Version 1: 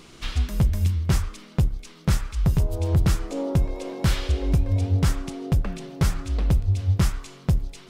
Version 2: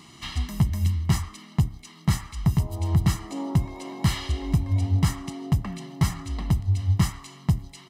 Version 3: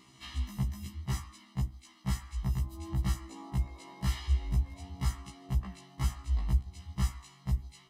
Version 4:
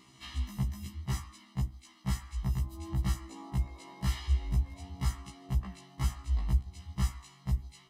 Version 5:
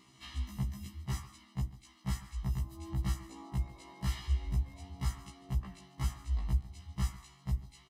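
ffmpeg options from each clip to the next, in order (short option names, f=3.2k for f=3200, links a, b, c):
-af "highpass=94,aecho=1:1:1:0.83,volume=-2.5dB"
-af "asubboost=boost=6.5:cutoff=55,afftfilt=real='re*1.73*eq(mod(b,3),0)':imag='im*1.73*eq(mod(b,3),0)':win_size=2048:overlap=0.75,volume=-7.5dB"
-af anull
-af "aecho=1:1:143:0.133,volume=-3dB"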